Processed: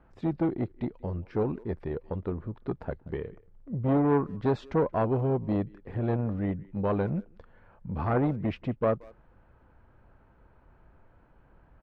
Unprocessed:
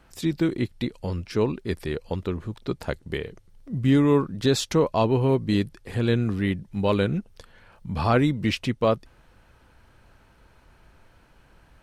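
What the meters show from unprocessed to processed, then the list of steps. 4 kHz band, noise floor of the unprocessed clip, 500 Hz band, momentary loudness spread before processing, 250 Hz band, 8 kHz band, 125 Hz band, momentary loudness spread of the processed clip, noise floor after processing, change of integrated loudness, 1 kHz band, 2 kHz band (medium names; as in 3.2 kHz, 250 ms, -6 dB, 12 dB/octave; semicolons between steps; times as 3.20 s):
under -20 dB, -57 dBFS, -4.5 dB, 11 LU, -5.5 dB, under -30 dB, -5.0 dB, 10 LU, -60 dBFS, -5.0 dB, -4.0 dB, -10.5 dB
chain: low-pass 1.3 kHz 12 dB/octave; speakerphone echo 180 ms, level -24 dB; transformer saturation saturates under 530 Hz; trim -2.5 dB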